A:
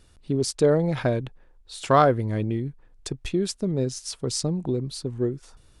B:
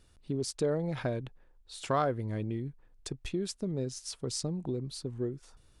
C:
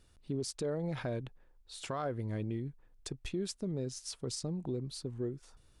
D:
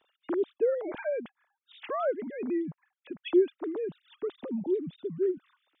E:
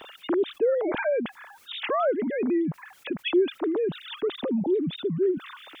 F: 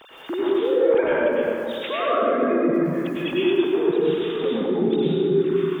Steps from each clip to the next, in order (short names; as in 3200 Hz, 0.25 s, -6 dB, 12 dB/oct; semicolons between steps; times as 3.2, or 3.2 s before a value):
compressor 1.5:1, threshold -26 dBFS, peak gain reduction 5 dB; gain -6.5 dB
limiter -25 dBFS, peak gain reduction 8 dB; gain -2 dB
sine-wave speech; gain +7 dB
fast leveller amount 50%
plate-style reverb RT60 2.6 s, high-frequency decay 0.5×, pre-delay 85 ms, DRR -8.5 dB; gain -3.5 dB